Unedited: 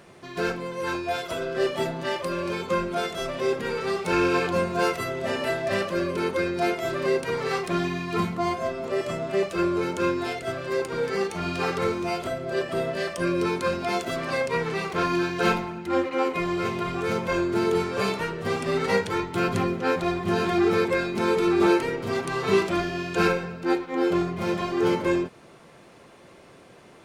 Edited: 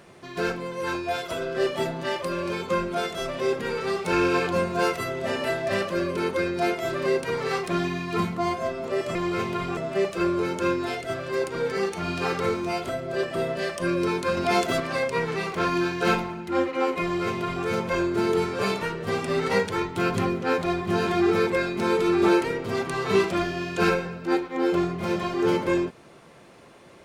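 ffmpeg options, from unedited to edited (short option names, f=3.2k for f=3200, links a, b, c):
-filter_complex "[0:a]asplit=5[a][b][c][d][e];[a]atrim=end=9.152[f];[b]atrim=start=16.408:end=17.032[g];[c]atrim=start=9.148:end=13.752[h];[d]atrim=start=13.748:end=14.182,asetpts=PTS-STARTPTS,volume=4.5dB[i];[e]atrim=start=14.178[j];[f][g]acrossfade=d=0.004:c1=hsin:c2=hsin[k];[k][h]acrossfade=d=0.004:c1=hsin:c2=hsin[l];[l][i]acrossfade=d=0.004:c1=hsin:c2=hsin[m];[m][j]acrossfade=d=0.004:c1=hsin:c2=hsin"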